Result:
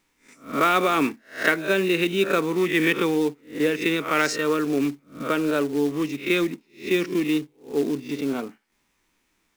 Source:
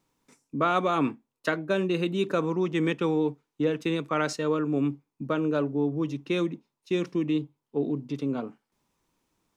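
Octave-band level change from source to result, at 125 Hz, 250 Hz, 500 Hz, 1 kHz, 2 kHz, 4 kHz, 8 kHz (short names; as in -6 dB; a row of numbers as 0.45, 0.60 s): -2.0, +3.5, +4.0, +4.5, +10.5, +8.5, +10.5 dB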